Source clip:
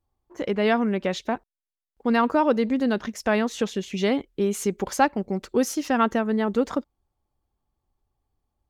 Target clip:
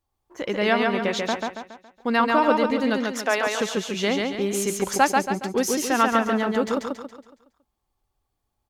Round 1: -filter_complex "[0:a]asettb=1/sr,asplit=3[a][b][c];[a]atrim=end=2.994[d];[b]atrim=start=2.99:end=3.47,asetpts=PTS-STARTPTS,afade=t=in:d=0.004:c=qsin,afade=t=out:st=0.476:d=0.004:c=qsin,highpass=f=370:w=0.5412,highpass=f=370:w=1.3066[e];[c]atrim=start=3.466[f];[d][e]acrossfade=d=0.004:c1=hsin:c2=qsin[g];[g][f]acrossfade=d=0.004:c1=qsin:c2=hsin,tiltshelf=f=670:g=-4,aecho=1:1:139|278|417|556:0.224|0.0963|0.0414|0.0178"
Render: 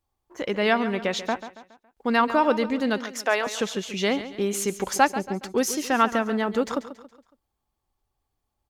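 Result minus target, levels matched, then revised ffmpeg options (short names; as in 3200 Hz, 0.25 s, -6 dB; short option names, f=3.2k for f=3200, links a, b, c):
echo-to-direct -10 dB
-filter_complex "[0:a]asettb=1/sr,asplit=3[a][b][c];[a]atrim=end=2.994[d];[b]atrim=start=2.99:end=3.47,asetpts=PTS-STARTPTS,afade=t=in:d=0.004:c=qsin,afade=t=out:st=0.476:d=0.004:c=qsin,highpass=f=370:w=0.5412,highpass=f=370:w=1.3066[e];[c]atrim=start=3.466[f];[d][e]acrossfade=d=0.004:c1=hsin:c2=qsin[g];[g][f]acrossfade=d=0.004:c1=qsin:c2=hsin,tiltshelf=f=670:g=-4,aecho=1:1:139|278|417|556|695|834:0.708|0.304|0.131|0.0563|0.0242|0.0104"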